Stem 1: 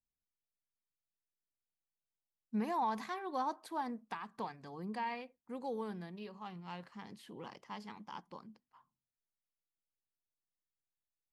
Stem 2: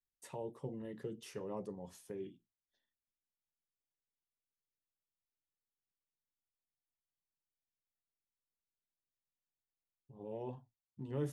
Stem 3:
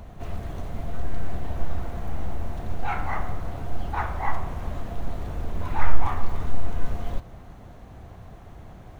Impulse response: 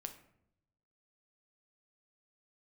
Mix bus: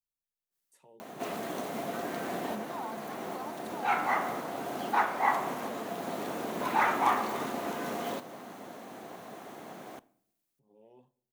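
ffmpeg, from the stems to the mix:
-filter_complex "[0:a]volume=-7dB,asplit=2[link_01][link_02];[1:a]highpass=frequency=150:width=0.5412,highpass=frequency=150:width=1.3066,acompressor=mode=upward:threshold=-56dB:ratio=2.5,adynamicequalizer=threshold=0.001:dfrequency=1500:dqfactor=0.7:tfrequency=1500:tqfactor=0.7:attack=5:release=100:ratio=0.375:range=2:mode=boostabove:tftype=highshelf,adelay=500,volume=-17.5dB,asplit=2[link_03][link_04];[link_04]volume=-4.5dB[link_05];[2:a]highpass=frequency=230:width=0.5412,highpass=frequency=230:width=1.3066,adelay=1000,volume=3dB,asplit=2[link_06][link_07];[link_07]volume=-6dB[link_08];[link_02]apad=whole_len=440616[link_09];[link_06][link_09]sidechaincompress=threshold=-46dB:ratio=8:attack=25:release=1000[link_10];[3:a]atrim=start_sample=2205[link_11];[link_05][link_08]amix=inputs=2:normalize=0[link_12];[link_12][link_11]afir=irnorm=-1:irlink=0[link_13];[link_01][link_03][link_10][link_13]amix=inputs=4:normalize=0,highshelf=frequency=7000:gain=8"

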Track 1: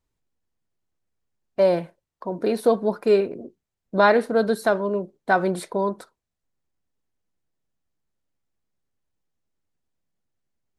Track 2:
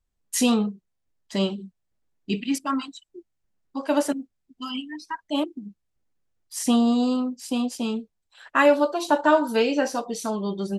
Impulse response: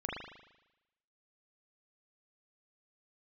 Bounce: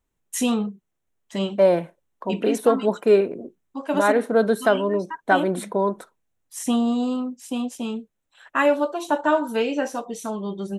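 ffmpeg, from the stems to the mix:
-filter_complex "[0:a]highpass=130,volume=2dB[link_01];[1:a]volume=-1.5dB,asplit=2[link_02][link_03];[link_03]apad=whole_len=475647[link_04];[link_01][link_04]sidechaincompress=threshold=-24dB:ratio=8:attack=16:release=343[link_05];[link_05][link_02]amix=inputs=2:normalize=0,equalizer=frequency=4700:width=4.3:gain=-12"

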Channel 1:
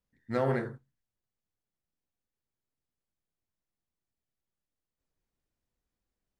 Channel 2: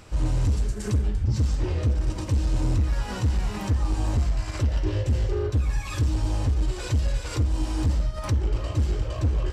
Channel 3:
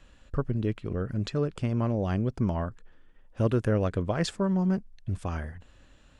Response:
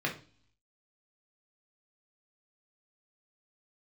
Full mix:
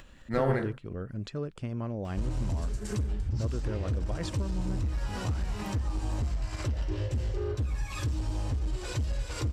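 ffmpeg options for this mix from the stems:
-filter_complex "[0:a]volume=1.5dB[link_01];[1:a]adelay=2050,volume=-3.5dB[link_02];[2:a]volume=-6.5dB[link_03];[link_02][link_03]amix=inputs=2:normalize=0,acompressor=threshold=-27dB:ratio=6,volume=0dB[link_04];[link_01][link_04]amix=inputs=2:normalize=0,acompressor=mode=upward:threshold=-42dB:ratio=2.5"

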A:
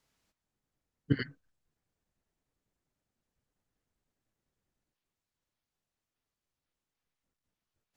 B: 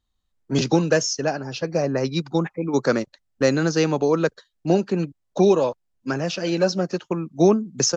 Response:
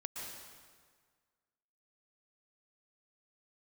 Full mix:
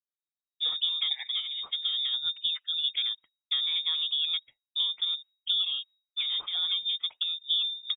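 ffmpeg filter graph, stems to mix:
-filter_complex "[0:a]volume=1.5dB,asplit=2[link_01][link_02];[link_02]volume=-23dB[link_03];[1:a]lowshelf=frequency=490:gain=10.5,adelay=100,volume=-11.5dB[link_04];[2:a]atrim=start_sample=2205[link_05];[link_03][link_05]afir=irnorm=-1:irlink=0[link_06];[link_01][link_04][link_06]amix=inputs=3:normalize=0,agate=range=-33dB:threshold=-40dB:ratio=3:detection=peak,acrossover=split=450|2400[link_07][link_08][link_09];[link_07]acompressor=threshold=-28dB:ratio=4[link_10];[link_08]acompressor=threshold=-36dB:ratio=4[link_11];[link_09]acompressor=threshold=-46dB:ratio=4[link_12];[link_10][link_11][link_12]amix=inputs=3:normalize=0,lowpass=frequency=3200:width_type=q:width=0.5098,lowpass=frequency=3200:width_type=q:width=0.6013,lowpass=frequency=3200:width_type=q:width=0.9,lowpass=frequency=3200:width_type=q:width=2.563,afreqshift=-3800"

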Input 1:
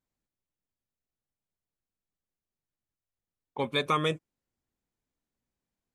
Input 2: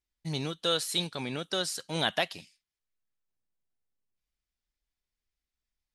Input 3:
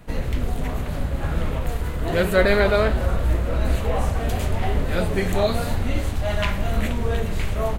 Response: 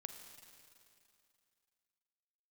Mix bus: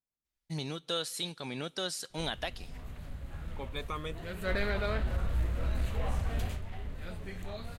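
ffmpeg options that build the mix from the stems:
-filter_complex "[0:a]volume=-12dB[link_01];[1:a]adelay=250,volume=-2.5dB,asplit=2[link_02][link_03];[link_03]volume=-19dB[link_04];[2:a]equalizer=frequency=500:width_type=o:width=2.5:gain=-6.5,asoftclip=type=tanh:threshold=-11dB,adynamicequalizer=threshold=0.00447:dfrequency=5400:dqfactor=0.7:tfrequency=5400:tqfactor=0.7:attack=5:release=100:ratio=0.375:range=3.5:mode=cutabove:tftype=highshelf,adelay=2100,volume=-6.5dB,afade=type=in:start_time=4.36:duration=0.27:silence=0.334965,afade=type=out:start_time=6.41:duration=0.21:silence=0.316228[link_05];[3:a]atrim=start_sample=2205[link_06];[link_04][link_06]afir=irnorm=-1:irlink=0[link_07];[link_01][link_02][link_05][link_07]amix=inputs=4:normalize=0,alimiter=limit=-22.5dB:level=0:latency=1:release=442"

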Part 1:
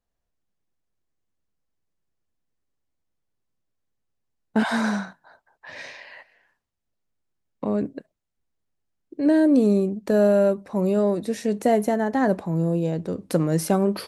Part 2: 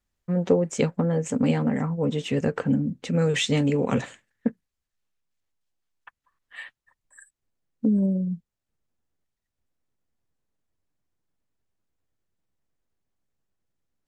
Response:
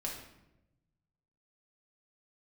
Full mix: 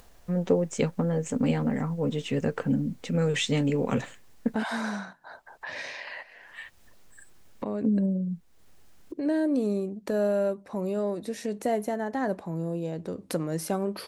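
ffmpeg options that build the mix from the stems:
-filter_complex "[0:a]equalizer=frequency=130:width_type=o:width=2.5:gain=-3.5,acompressor=mode=upward:threshold=-21dB:ratio=2.5,volume=-6.5dB[link_01];[1:a]volume=-3dB[link_02];[link_01][link_02]amix=inputs=2:normalize=0"

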